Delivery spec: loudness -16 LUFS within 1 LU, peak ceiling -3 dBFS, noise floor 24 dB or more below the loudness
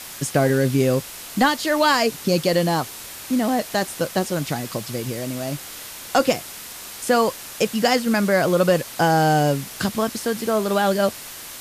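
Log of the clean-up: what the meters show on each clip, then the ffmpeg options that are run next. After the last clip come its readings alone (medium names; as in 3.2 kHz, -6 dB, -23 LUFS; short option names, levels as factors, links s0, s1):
noise floor -37 dBFS; noise floor target -45 dBFS; loudness -21.0 LUFS; peak level -5.5 dBFS; loudness target -16.0 LUFS
-> -af "afftdn=nr=8:nf=-37"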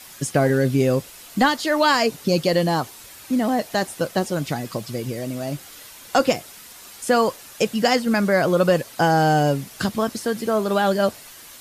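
noise floor -43 dBFS; noise floor target -46 dBFS
-> -af "afftdn=nr=6:nf=-43"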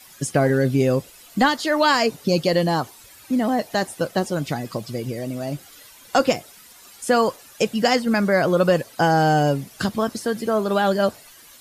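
noise floor -47 dBFS; loudness -21.5 LUFS; peak level -5.5 dBFS; loudness target -16.0 LUFS
-> -af "volume=1.88,alimiter=limit=0.708:level=0:latency=1"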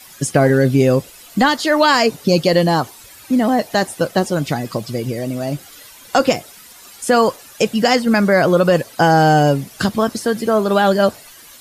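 loudness -16.5 LUFS; peak level -3.0 dBFS; noise floor -42 dBFS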